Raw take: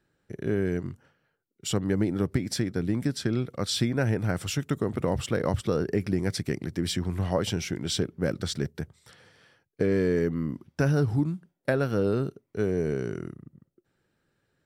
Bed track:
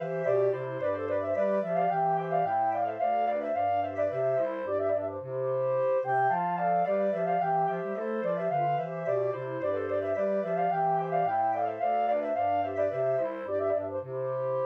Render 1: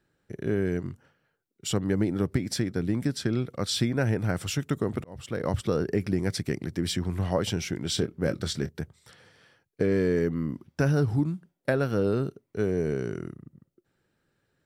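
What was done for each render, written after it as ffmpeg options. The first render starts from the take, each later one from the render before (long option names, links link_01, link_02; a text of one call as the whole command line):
ffmpeg -i in.wav -filter_complex "[0:a]asettb=1/sr,asplit=3[link_01][link_02][link_03];[link_01]atrim=end=7.954[link_04];[link_02]atrim=start=7.95:end=8.71,asetpts=PTS-STARTPTS,afade=type=in:duration=0.004:curve=qsin,afade=type=out:start_time=0.756:duration=0.004:curve=qsin,asplit=2[link_05][link_06];[link_06]adelay=25,volume=-11dB[link_07];[link_05][link_07]amix=inputs=2:normalize=0,atrim=end_sample=33516[link_08];[link_03]atrim=start=8.706[link_09];[link_04][link_08]acrossfade=duration=0.004:curve1=hsin:curve2=qsin[link_10];[link_10][link_09]acrossfade=duration=0.004:curve1=qsin:curve2=hsin,asplit=2[link_11][link_12];[link_11]atrim=end=5.04,asetpts=PTS-STARTPTS,afade=type=out:start_time=5.036:duration=0.004:curve=hsin[link_13];[link_12]atrim=start=5.04,asetpts=PTS-STARTPTS,afade=type=in:duration=0.53[link_14];[link_13][link_14]concat=n=2:v=0:a=1" out.wav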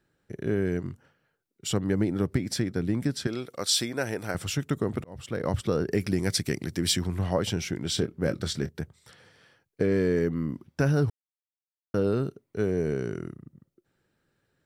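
ffmpeg -i in.wav -filter_complex "[0:a]asettb=1/sr,asplit=3[link_01][link_02][link_03];[link_01]atrim=end=3.274[link_04];[link_02]atrim=start=3.27:end=4.35,asetpts=PTS-STARTPTS,afade=type=in:duration=0.004:curve=qsin,afade=type=out:start_time=1.076:duration=0.004:curve=qsin,bass=frequency=250:gain=-13,treble=frequency=4000:gain=8[link_05];[link_03]atrim=start=4.346[link_06];[link_04][link_05]acrossfade=duration=0.004:curve1=hsin:curve2=qsin[link_07];[link_07][link_06]acrossfade=duration=0.004:curve1=qsin:curve2=hsin,asettb=1/sr,asplit=3[link_08][link_09][link_10];[link_08]atrim=end=5.914[link_11];[link_09]atrim=start=5.91:end=7.07,asetpts=PTS-STARTPTS,afade=type=in:duration=0.004:curve=qsin,afade=type=out:start_time=1.156:duration=0.004:curve=qsin,highshelf=frequency=2700:gain=9[link_12];[link_10]atrim=start=7.066[link_13];[link_11][link_12]acrossfade=duration=0.004:curve1=hsin:curve2=qsin[link_14];[link_14][link_13]acrossfade=duration=0.004:curve1=qsin:curve2=hsin,asplit=3[link_15][link_16][link_17];[link_15]atrim=end=11.1,asetpts=PTS-STARTPTS,afade=type=out:start_time=11.096:duration=0.004:curve=hsin[link_18];[link_16]atrim=start=11.1:end=11.94,asetpts=PTS-STARTPTS,volume=0[link_19];[link_17]atrim=start=11.94,asetpts=PTS-STARTPTS,afade=type=in:duration=0.004:curve=hsin[link_20];[link_18][link_19][link_20]concat=n=3:v=0:a=1" out.wav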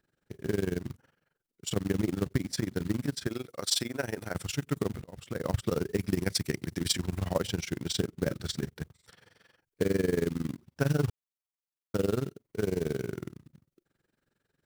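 ffmpeg -i in.wav -af "acrusher=bits=4:mode=log:mix=0:aa=0.000001,tremolo=f=22:d=0.919" out.wav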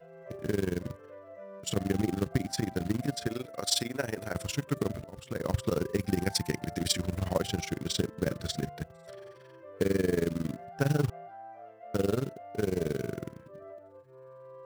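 ffmpeg -i in.wav -i bed.wav -filter_complex "[1:a]volume=-19dB[link_01];[0:a][link_01]amix=inputs=2:normalize=0" out.wav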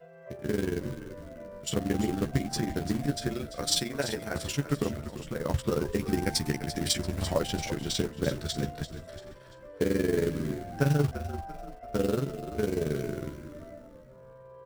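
ffmpeg -i in.wav -filter_complex "[0:a]asplit=2[link_01][link_02];[link_02]adelay=14,volume=-5dB[link_03];[link_01][link_03]amix=inputs=2:normalize=0,asplit=5[link_04][link_05][link_06][link_07][link_08];[link_05]adelay=341,afreqshift=-60,volume=-11.5dB[link_09];[link_06]adelay=682,afreqshift=-120,volume=-19dB[link_10];[link_07]adelay=1023,afreqshift=-180,volume=-26.6dB[link_11];[link_08]adelay=1364,afreqshift=-240,volume=-34.1dB[link_12];[link_04][link_09][link_10][link_11][link_12]amix=inputs=5:normalize=0" out.wav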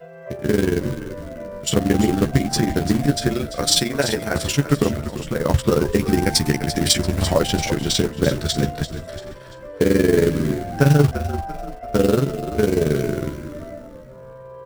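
ffmpeg -i in.wav -af "volume=11dB,alimiter=limit=-3dB:level=0:latency=1" out.wav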